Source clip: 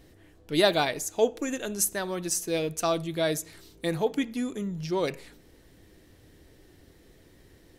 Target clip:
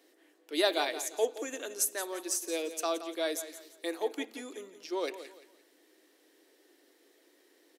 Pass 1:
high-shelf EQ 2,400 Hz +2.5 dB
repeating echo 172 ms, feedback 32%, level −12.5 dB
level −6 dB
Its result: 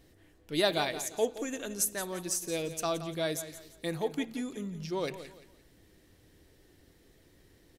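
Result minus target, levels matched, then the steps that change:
250 Hz band +3.0 dB
add first: Butterworth high-pass 290 Hz 48 dB per octave

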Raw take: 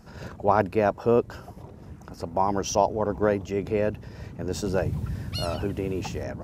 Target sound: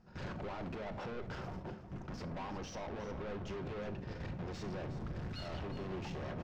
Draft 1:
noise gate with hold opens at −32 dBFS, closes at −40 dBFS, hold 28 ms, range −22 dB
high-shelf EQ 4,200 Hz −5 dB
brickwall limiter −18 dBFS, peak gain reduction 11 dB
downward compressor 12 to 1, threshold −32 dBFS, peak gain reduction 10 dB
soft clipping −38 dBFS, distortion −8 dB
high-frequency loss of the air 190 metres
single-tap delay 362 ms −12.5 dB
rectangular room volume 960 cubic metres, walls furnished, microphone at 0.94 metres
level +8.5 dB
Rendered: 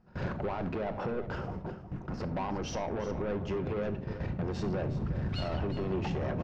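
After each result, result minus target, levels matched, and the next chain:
soft clipping: distortion −5 dB; 8,000 Hz band −2.0 dB
noise gate with hold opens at −32 dBFS, closes at −40 dBFS, hold 28 ms, range −22 dB
high-shelf EQ 4,200 Hz −5 dB
brickwall limiter −18 dBFS, peak gain reduction 11 dB
downward compressor 12 to 1, threshold −32 dBFS, peak gain reduction 10 dB
soft clipping −49.5 dBFS, distortion −3 dB
high-frequency loss of the air 190 metres
single-tap delay 362 ms −12.5 dB
rectangular room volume 960 cubic metres, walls furnished, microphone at 0.94 metres
level +8.5 dB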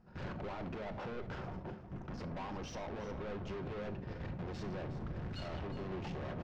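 8,000 Hz band −2.5 dB
noise gate with hold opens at −32 dBFS, closes at −40 dBFS, hold 28 ms, range −22 dB
high-shelf EQ 4,200 Hz +6.5 dB
brickwall limiter −18 dBFS, peak gain reduction 11.5 dB
downward compressor 12 to 1, threshold −32 dBFS, peak gain reduction 10 dB
soft clipping −49.5 dBFS, distortion −3 dB
high-frequency loss of the air 190 metres
single-tap delay 362 ms −12.5 dB
rectangular room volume 960 cubic metres, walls furnished, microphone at 0.94 metres
level +8.5 dB

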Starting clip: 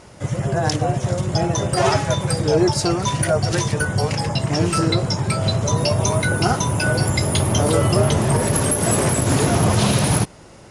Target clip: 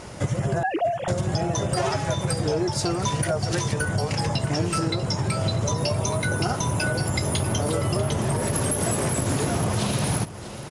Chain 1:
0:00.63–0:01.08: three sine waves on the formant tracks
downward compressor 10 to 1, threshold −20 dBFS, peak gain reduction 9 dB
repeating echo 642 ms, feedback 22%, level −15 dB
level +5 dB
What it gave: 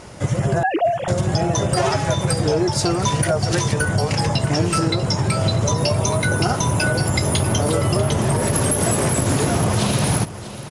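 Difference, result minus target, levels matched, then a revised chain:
downward compressor: peak gain reduction −5.5 dB
0:00.63–0:01.08: three sine waves on the formant tracks
downward compressor 10 to 1, threshold −26 dBFS, peak gain reduction 14.5 dB
repeating echo 642 ms, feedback 22%, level −15 dB
level +5 dB

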